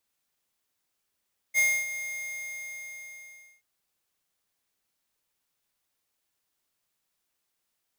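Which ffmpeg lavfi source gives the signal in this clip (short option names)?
-f lavfi -i "aevalsrc='0.0841*(2*lt(mod(2130*t,1),0.5)-1)':d=2.08:s=44100,afade=t=in:d=0.043,afade=t=out:st=0.043:d=0.27:silence=0.224,afade=t=out:st=0.43:d=1.65"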